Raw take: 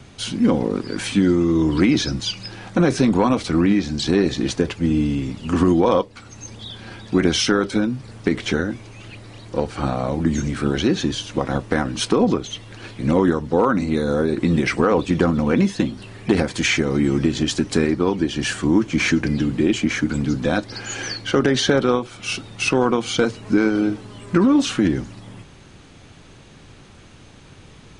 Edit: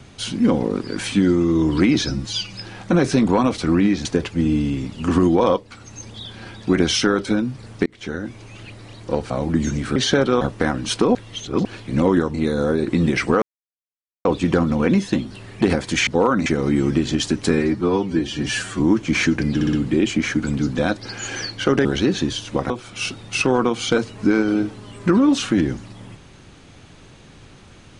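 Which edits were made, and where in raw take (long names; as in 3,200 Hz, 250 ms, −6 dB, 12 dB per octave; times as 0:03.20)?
0:02.10–0:02.38: time-stretch 1.5×
0:03.91–0:04.50: remove
0:08.31–0:08.89: fade in
0:09.75–0:10.01: remove
0:10.67–0:11.52: swap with 0:21.52–0:21.97
0:12.26–0:12.76: reverse
0:13.45–0:13.84: move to 0:16.74
0:14.92: splice in silence 0.83 s
0:17.79–0:18.65: time-stretch 1.5×
0:19.40: stutter 0.06 s, 4 plays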